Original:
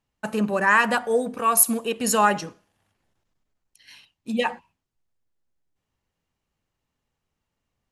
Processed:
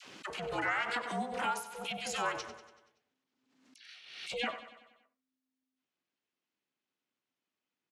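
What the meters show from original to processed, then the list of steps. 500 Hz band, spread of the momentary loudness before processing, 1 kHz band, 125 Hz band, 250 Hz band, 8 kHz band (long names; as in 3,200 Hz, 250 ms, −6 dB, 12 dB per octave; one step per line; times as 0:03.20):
−15.0 dB, 12 LU, −13.0 dB, −13.5 dB, −17.5 dB, −22.0 dB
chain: tilt shelving filter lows −6 dB, about 1,200 Hz
downward compressor 5 to 1, threshold −21 dBFS, peak gain reduction 13.5 dB
all-pass dispersion lows, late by 62 ms, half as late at 830 Hz
ring modulation 260 Hz
band-pass filter 160–4,900 Hz
on a send: repeating echo 95 ms, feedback 56%, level −13 dB
on the sum: background raised ahead of every attack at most 57 dB per second
level −6 dB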